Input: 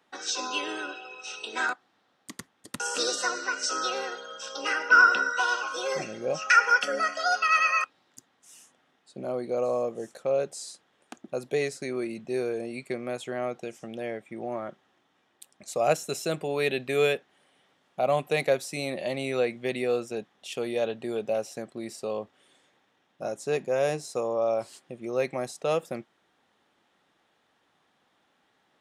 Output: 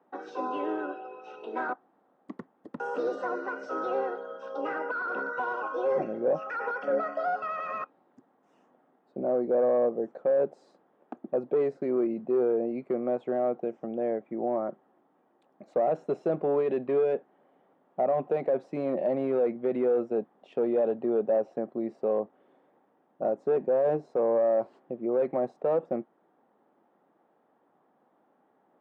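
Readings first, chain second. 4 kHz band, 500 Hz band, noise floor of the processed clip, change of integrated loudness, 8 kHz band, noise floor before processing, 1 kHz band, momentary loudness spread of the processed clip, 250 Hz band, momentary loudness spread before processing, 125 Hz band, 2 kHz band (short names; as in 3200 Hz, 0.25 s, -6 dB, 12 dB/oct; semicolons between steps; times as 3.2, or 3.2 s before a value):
under -20 dB, +2.5 dB, -69 dBFS, -1.5 dB, under -30 dB, -70 dBFS, -4.5 dB, 11 LU, +3.5 dB, 16 LU, -5.0 dB, -13.0 dB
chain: limiter -19.5 dBFS, peak gain reduction 11.5 dB; hard clip -25.5 dBFS, distortion -14 dB; Butterworth band-pass 420 Hz, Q 0.57; gain +5.5 dB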